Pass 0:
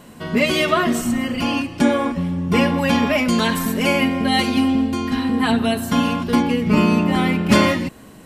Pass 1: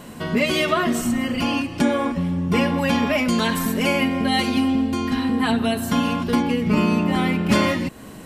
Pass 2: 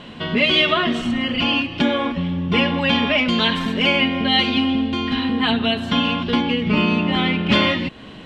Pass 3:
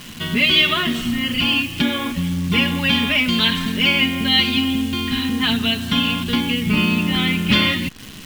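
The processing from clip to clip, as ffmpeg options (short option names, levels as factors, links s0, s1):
-af "acompressor=threshold=0.0251:ratio=1.5,volume=1.58"
-af "lowpass=f=3300:t=q:w=3.4"
-af "acrusher=bits=7:dc=4:mix=0:aa=0.000001,equalizer=f=610:w=0.66:g=-12.5,volume=1.58"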